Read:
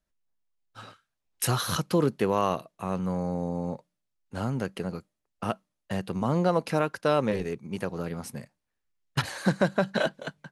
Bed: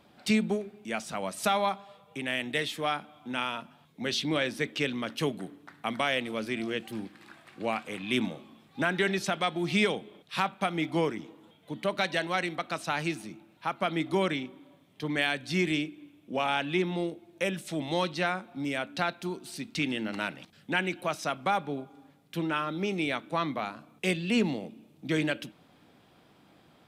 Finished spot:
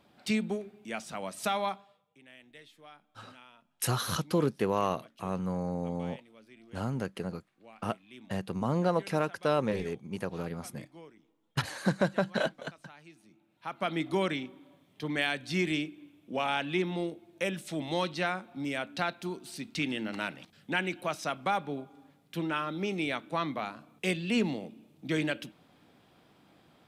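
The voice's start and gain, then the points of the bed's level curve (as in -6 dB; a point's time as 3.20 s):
2.40 s, -3.5 dB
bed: 1.72 s -4 dB
2.15 s -23 dB
13.09 s -23 dB
13.87 s -2 dB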